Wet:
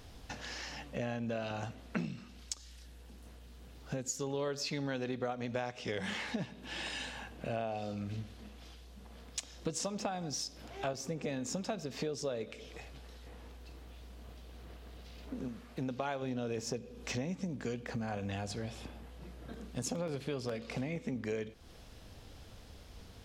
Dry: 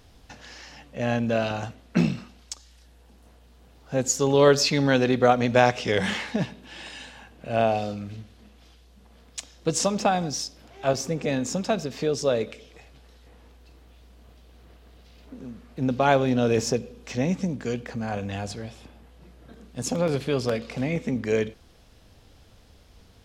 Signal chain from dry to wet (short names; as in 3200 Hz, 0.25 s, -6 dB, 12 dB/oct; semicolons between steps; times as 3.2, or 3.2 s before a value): 15.48–16.22 low shelf 470 Hz -6 dB; compressor 6:1, threshold -36 dBFS, peak gain reduction 22 dB; 2.05–4.23 bell 790 Hz -5 dB 1.4 oct; gain +1 dB